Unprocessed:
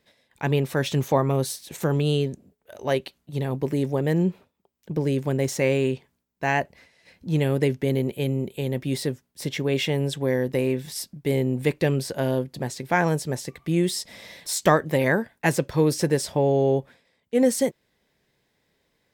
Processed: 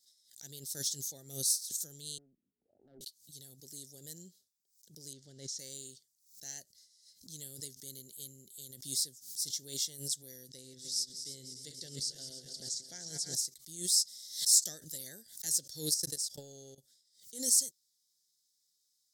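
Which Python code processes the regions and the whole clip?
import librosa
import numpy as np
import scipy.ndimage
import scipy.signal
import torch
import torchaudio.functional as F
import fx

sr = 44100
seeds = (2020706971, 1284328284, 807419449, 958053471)

y = fx.chain(x, sr, fx.cheby_ripple(hz=1100.0, ripple_db=9),
    fx.tube_stage(drive_db=25.0, bias=0.45),
    fx.band_squash(depth_pct=100), at=(2.18, 3.01))
y = fx.chain(y, sr, fx.zero_step(step_db=-39.0),
    fx.lowpass(hz=3200.0, slope=12), at=(5.13, 5.59))
y = fx.chain(y, sr, fx.reverse_delay_fb(ms=151, feedback_pct=74, wet_db=-10.0),
    fx.lowpass(hz=6100.0, slope=12), at=(10.49, 13.35))
y = fx.chain(y, sr, fx.level_steps(step_db=20),
    fx.transient(attack_db=11, sustain_db=2), at=(15.94, 16.78))
y = scipy.signal.sosfilt(scipy.signal.cheby2(4, 40, 2700.0, 'highpass', fs=sr, output='sos'), y)
y = fx.high_shelf(y, sr, hz=11000.0, db=-11.0)
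y = fx.pre_swell(y, sr, db_per_s=120.0)
y = F.gain(torch.from_numpy(y), 8.0).numpy()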